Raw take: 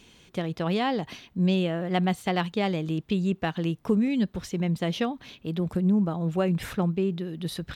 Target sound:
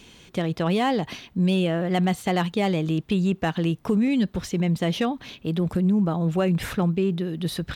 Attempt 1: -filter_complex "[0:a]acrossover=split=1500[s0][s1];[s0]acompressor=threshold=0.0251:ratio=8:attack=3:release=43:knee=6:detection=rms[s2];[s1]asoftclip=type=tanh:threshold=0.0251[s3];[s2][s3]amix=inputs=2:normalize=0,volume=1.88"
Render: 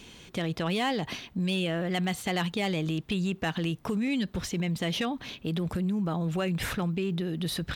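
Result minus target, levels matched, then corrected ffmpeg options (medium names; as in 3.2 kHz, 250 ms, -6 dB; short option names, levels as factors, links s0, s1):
compression: peak gain reduction +8.5 dB
-filter_complex "[0:a]acrossover=split=1500[s0][s1];[s0]acompressor=threshold=0.0794:ratio=8:attack=3:release=43:knee=6:detection=rms[s2];[s1]asoftclip=type=tanh:threshold=0.0251[s3];[s2][s3]amix=inputs=2:normalize=0,volume=1.88"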